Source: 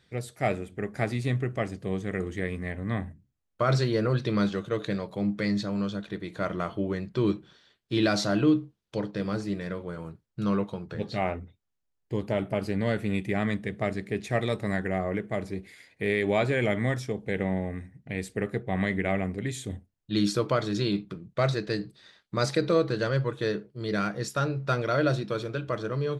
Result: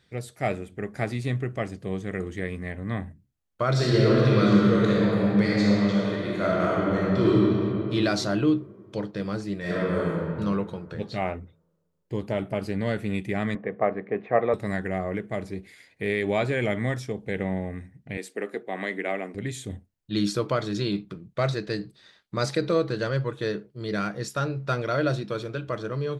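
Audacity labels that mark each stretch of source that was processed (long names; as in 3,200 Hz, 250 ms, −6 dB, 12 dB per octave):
3.710000	7.360000	thrown reverb, RT60 3 s, DRR −6.5 dB
9.600000	10.250000	thrown reverb, RT60 2 s, DRR −10.5 dB
13.550000	14.540000	loudspeaker in its box 180–2,200 Hz, peaks and dips at 500 Hz +10 dB, 740 Hz +8 dB, 1,100 Hz +9 dB
18.170000	19.350000	high-pass filter 260 Hz 24 dB per octave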